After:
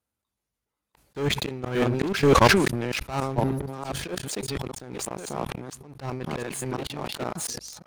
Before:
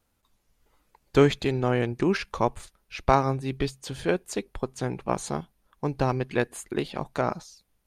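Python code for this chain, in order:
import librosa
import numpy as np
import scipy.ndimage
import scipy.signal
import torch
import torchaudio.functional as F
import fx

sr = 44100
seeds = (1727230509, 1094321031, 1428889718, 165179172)

y = fx.reverse_delay(x, sr, ms=584, wet_db=-4.0)
y = scipy.signal.sosfilt(scipy.signal.butter(4, 54.0, 'highpass', fs=sr, output='sos'), y)
y = fx.peak_eq(y, sr, hz=10000.0, db=3.5, octaves=0.6)
y = fx.leveller(y, sr, passes=1)
y = fx.level_steps(y, sr, step_db=20)
y = fx.spec_box(y, sr, start_s=3.36, length_s=0.37, low_hz=980.0, high_hz=10000.0, gain_db=-20)
y = fx.leveller(y, sr, passes=3)
y = fx.auto_swell(y, sr, attack_ms=352.0)
y = fx.sustainer(y, sr, db_per_s=44.0)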